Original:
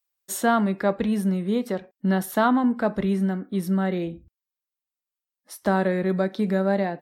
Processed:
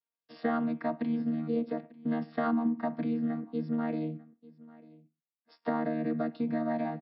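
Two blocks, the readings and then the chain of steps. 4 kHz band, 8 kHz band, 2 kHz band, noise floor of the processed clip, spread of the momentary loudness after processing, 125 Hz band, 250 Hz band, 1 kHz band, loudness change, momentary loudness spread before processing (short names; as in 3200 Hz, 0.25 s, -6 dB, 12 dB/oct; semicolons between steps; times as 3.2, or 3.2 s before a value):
under -15 dB, under -40 dB, -12.5 dB, under -85 dBFS, 6 LU, -12.5 dB, -6.5 dB, -9.5 dB, -8.0 dB, 8 LU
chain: chord vocoder bare fifth, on D#3; HPF 310 Hz 6 dB/oct; compressor 3:1, threshold -27 dBFS, peak gain reduction 7 dB; brick-wall FIR low-pass 5500 Hz; echo 0.894 s -21.5 dB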